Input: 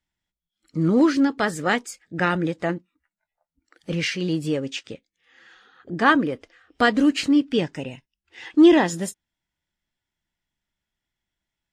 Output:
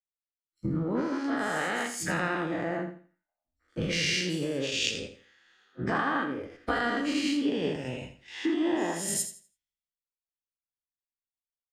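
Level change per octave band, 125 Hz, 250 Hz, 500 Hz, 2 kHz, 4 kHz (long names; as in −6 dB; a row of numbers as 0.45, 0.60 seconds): −6.0, −10.0, −8.0, −5.5, −2.0 decibels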